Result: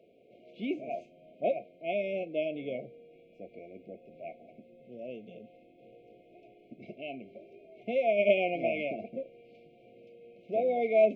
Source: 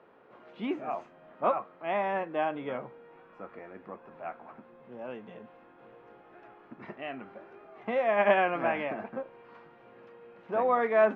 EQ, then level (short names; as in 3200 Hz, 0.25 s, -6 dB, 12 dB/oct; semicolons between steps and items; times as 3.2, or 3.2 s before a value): dynamic EQ 1600 Hz, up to +5 dB, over -40 dBFS, Q 0.75; brick-wall FIR band-stop 730–2100 Hz; -1.0 dB